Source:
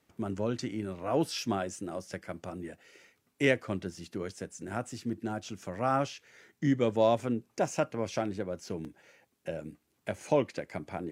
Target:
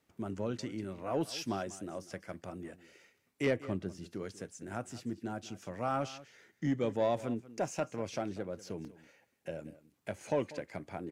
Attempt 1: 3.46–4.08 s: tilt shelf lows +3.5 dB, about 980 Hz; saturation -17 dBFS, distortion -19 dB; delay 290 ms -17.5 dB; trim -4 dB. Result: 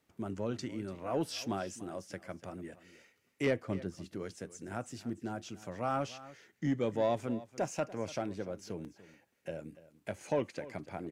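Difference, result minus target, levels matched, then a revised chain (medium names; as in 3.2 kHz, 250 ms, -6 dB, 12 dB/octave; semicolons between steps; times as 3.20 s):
echo 98 ms late
3.46–4.08 s: tilt shelf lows +3.5 dB, about 980 Hz; saturation -17 dBFS, distortion -19 dB; delay 192 ms -17.5 dB; trim -4 dB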